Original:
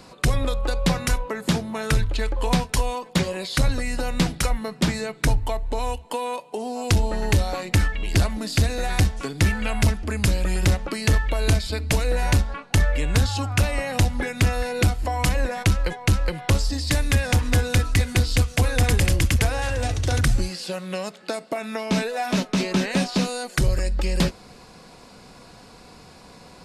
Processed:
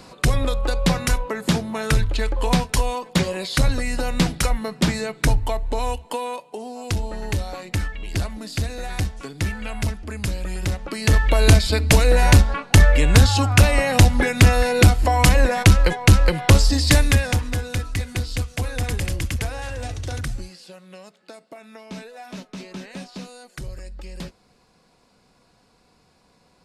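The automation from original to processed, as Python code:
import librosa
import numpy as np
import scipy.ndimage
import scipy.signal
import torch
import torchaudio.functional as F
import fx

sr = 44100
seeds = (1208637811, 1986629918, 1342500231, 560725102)

y = fx.gain(x, sr, db=fx.line((6.01, 2.0), (6.75, -5.0), (10.73, -5.0), (11.34, 7.0), (16.96, 7.0), (17.56, -5.5), (20.0, -5.5), (20.77, -13.5)))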